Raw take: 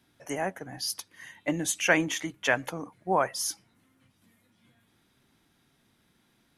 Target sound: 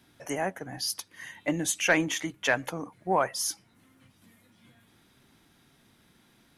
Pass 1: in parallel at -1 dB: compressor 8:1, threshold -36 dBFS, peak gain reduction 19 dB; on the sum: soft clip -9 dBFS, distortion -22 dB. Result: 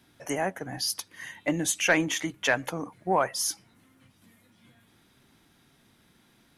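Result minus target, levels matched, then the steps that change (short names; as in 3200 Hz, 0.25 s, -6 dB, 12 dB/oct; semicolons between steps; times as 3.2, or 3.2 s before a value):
compressor: peak gain reduction -10.5 dB
change: compressor 8:1, threshold -48 dBFS, peak gain reduction 29.5 dB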